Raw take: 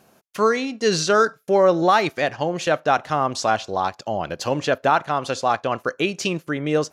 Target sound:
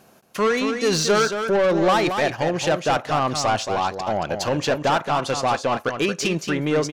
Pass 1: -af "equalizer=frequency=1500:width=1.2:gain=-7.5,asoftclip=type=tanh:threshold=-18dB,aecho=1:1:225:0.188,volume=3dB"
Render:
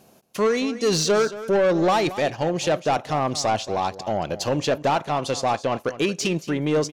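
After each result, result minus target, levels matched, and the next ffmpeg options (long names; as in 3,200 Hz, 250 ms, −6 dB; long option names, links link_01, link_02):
echo-to-direct −7.5 dB; 2,000 Hz band −3.0 dB
-af "equalizer=frequency=1500:width=1.2:gain=-7.5,asoftclip=type=tanh:threshold=-18dB,aecho=1:1:225:0.447,volume=3dB"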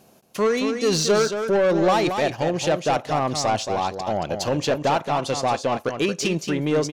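2,000 Hz band −3.0 dB
-af "asoftclip=type=tanh:threshold=-18dB,aecho=1:1:225:0.447,volume=3dB"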